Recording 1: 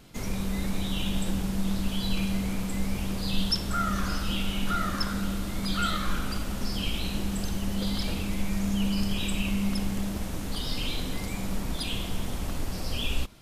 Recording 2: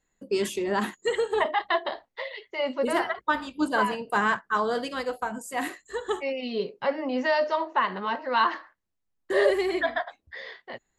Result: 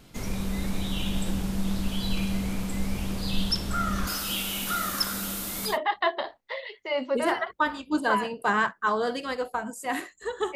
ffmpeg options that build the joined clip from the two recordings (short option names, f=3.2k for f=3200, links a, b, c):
-filter_complex "[0:a]asettb=1/sr,asplit=3[a][b][c];[a]atrim=end=4.074[d];[b]atrim=start=4.07:end=5.78,asetpts=PTS-STARTPTS,afade=t=in:d=0.004:c=qsin,afade=t=out:st=1.706:d=0.004:c=qsin,aemphasis=mode=production:type=bsi[e];[c]atrim=start=5.776[f];[d][e]acrossfade=d=0.004:c1=hsin:c2=qsin[g];[g][f]acrossfade=d=0.004:c1=qsin:c2=hsin,apad=whole_dur=10.55,atrim=end=10.55,atrim=end=5.78,asetpts=PTS-STARTPTS[h];[1:a]atrim=start=1.32:end=6.23,asetpts=PTS-STARTPTS[i];[h][i]acrossfade=d=0.14:c1=tri:c2=tri"